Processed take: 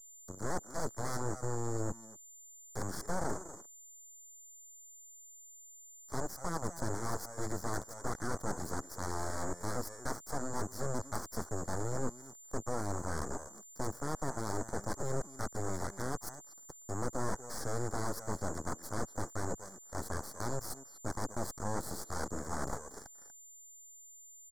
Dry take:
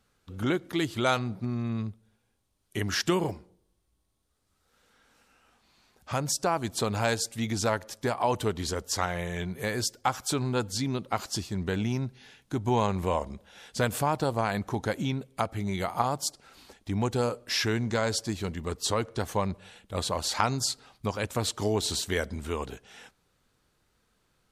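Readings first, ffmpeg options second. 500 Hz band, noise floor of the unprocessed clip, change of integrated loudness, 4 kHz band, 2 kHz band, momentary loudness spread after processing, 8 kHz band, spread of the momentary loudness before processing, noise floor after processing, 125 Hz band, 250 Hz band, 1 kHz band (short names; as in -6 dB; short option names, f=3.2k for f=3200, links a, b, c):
-9.5 dB, -73 dBFS, -10.0 dB, -18.0 dB, -11.0 dB, 14 LU, -6.5 dB, 8 LU, -55 dBFS, -9.0 dB, -10.0 dB, -9.0 dB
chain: -filter_complex "[0:a]areverse,acompressor=threshold=-37dB:ratio=20,areverse,acrusher=bits=6:mix=0:aa=0.5,highpass=f=87:w=0.5412,highpass=f=87:w=1.3066,bass=f=250:g=-1,treble=f=4k:g=-12,asplit=2[a][b];[b]adelay=240,highpass=300,lowpass=3.4k,asoftclip=type=hard:threshold=-35.5dB,volume=-10dB[c];[a][c]amix=inputs=2:normalize=0,acrossover=split=470|3600[d][e][f];[f]acompressor=mode=upward:threshold=-59dB:ratio=2.5[g];[d][e][g]amix=inputs=3:normalize=0,aeval=exprs='val(0)+0.00178*sin(2*PI*7200*n/s)':c=same,aeval=exprs='0.0501*(cos(1*acos(clip(val(0)/0.0501,-1,1)))-cos(1*PI/2))+0.00891*(cos(5*acos(clip(val(0)/0.0501,-1,1)))-cos(5*PI/2))+0.0251*(cos(7*acos(clip(val(0)/0.0501,-1,1)))-cos(7*PI/2))+0.0251*(cos(8*acos(clip(val(0)/0.0501,-1,1)))-cos(8*PI/2))':c=same,asuperstop=centerf=2700:order=4:qfactor=0.84,equalizer=f=3.8k:w=6.1:g=-10.5,volume=-1.5dB"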